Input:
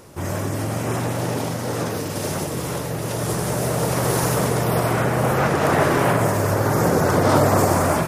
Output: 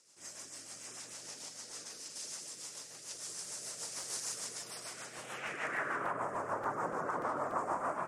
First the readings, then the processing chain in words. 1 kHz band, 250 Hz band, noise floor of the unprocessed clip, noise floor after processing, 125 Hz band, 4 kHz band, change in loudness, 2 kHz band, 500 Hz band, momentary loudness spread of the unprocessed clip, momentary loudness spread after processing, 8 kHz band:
-16.0 dB, -27.0 dB, -27 dBFS, -52 dBFS, -35.5 dB, -13.5 dB, -19.0 dB, -15.0 dB, -22.5 dB, 9 LU, 10 LU, -12.0 dB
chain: graphic EQ 125/250/4000/8000 Hz +6/+5/-9/+11 dB; band-pass sweep 4600 Hz -> 1100 Hz, 5.05–6.13; LPF 11000 Hz 12 dB/oct; compressor 3:1, threshold -26 dBFS, peak gain reduction 6 dB; low shelf 140 Hz -9 dB; rotary speaker horn 6.7 Hz; crackling interface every 0.29 s, samples 256, repeat, from 0.54; gain -3.5 dB

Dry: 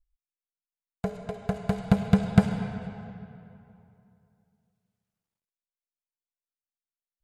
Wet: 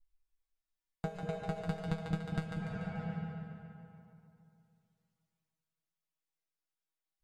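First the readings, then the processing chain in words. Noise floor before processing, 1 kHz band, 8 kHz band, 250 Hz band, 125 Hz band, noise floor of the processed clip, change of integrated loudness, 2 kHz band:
under -85 dBFS, -8.0 dB, n/a, -13.0 dB, -10.0 dB, under -85 dBFS, -12.5 dB, -6.5 dB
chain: high shelf 6500 Hz -6.5 dB; compressor 10:1, threshold -33 dBFS, peak gain reduction 22 dB; resonator 160 Hz, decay 0.16 s, harmonics all, mix 100%; on a send: split-band echo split 370 Hz, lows 0.19 s, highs 0.145 s, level -5 dB; on the sum: gain +9 dB

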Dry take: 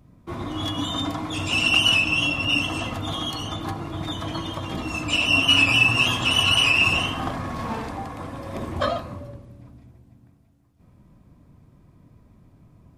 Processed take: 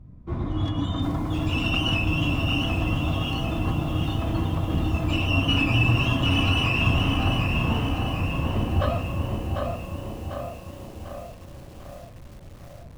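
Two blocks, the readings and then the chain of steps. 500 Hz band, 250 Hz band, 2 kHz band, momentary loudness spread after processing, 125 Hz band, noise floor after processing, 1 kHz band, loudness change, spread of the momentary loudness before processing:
+1.0 dB, +3.5 dB, -7.0 dB, 18 LU, +8.0 dB, -43 dBFS, -2.0 dB, -4.0 dB, 17 LU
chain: RIAA curve playback; notches 50/100/150/200/250/300 Hz; narrowing echo 0.779 s, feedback 62%, band-pass 540 Hz, level -4 dB; lo-fi delay 0.746 s, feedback 55%, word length 7-bit, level -5.5 dB; gain -4.5 dB

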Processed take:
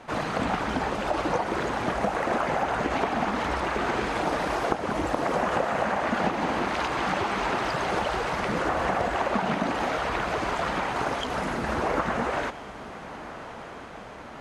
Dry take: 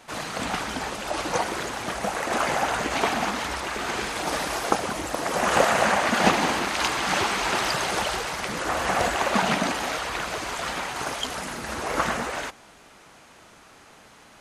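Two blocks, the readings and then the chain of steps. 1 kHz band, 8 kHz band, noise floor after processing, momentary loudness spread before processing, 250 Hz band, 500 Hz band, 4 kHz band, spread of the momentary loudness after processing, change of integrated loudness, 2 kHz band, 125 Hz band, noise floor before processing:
-0.5 dB, -12.5 dB, -41 dBFS, 9 LU, +1.0 dB, +0.5 dB, -7.5 dB, 13 LU, -2.0 dB, -3.5 dB, +2.0 dB, -51 dBFS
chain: compressor 12:1, threshold -27 dBFS, peak gain reduction 14 dB; LPF 1200 Hz 6 dB/oct; diffused feedback echo 1.309 s, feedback 68%, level -15.5 dB; gain +7 dB

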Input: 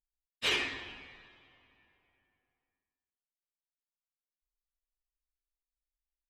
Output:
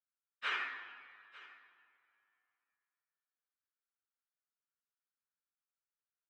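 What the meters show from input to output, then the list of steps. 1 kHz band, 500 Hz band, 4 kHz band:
+0.5 dB, -15.5 dB, -12.0 dB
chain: band-pass 1400 Hz, Q 4.6; echo 0.897 s -19.5 dB; gain +6.5 dB

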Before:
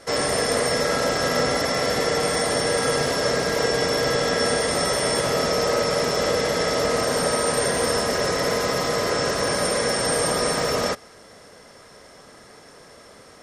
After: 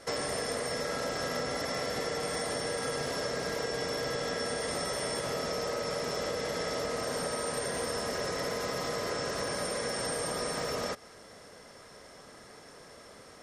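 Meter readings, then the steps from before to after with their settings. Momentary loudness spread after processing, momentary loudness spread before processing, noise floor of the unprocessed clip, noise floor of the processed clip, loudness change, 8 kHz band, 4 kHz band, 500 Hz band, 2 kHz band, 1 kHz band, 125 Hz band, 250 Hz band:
18 LU, 1 LU, -48 dBFS, -52 dBFS, -11.5 dB, -11.5 dB, -11.5 dB, -11.5 dB, -11.5 dB, -11.5 dB, -11.5 dB, -11.5 dB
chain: compressor, threshold -26 dBFS, peak gain reduction 9 dB; gain -4.5 dB

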